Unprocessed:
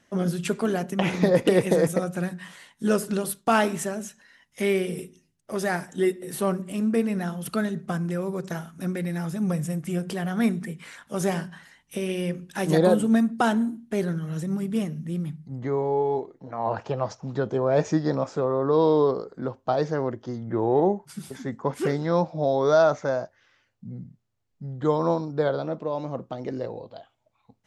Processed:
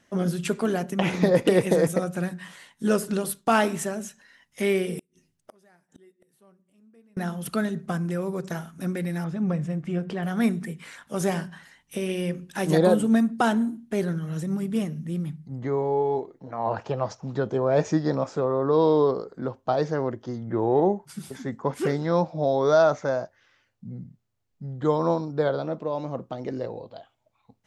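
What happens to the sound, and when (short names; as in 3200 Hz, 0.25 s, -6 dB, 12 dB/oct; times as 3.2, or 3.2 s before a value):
4.99–7.17 flipped gate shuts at -30 dBFS, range -33 dB
9.24–10.23 Bessel low-pass 2800 Hz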